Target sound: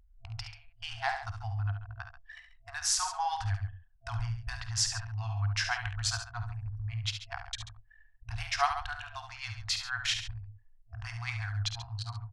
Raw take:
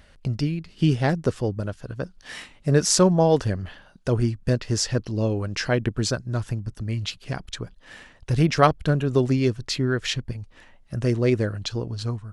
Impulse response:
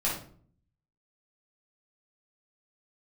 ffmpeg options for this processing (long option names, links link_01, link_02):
-filter_complex "[0:a]asplit=2[link_01][link_02];[1:a]atrim=start_sample=2205,atrim=end_sample=3969,asetrate=37485,aresample=44100[link_03];[link_02][link_03]afir=irnorm=-1:irlink=0,volume=-19.5dB[link_04];[link_01][link_04]amix=inputs=2:normalize=0,anlmdn=25.1,aecho=1:1:51|70|137:0.211|0.376|0.211,alimiter=limit=-7.5dB:level=0:latency=1:release=379,afftfilt=real='re*(1-between(b*sr/4096,110,670))':imag='im*(1-between(b*sr/4096,110,670))':win_size=4096:overlap=0.75,volume=-4.5dB"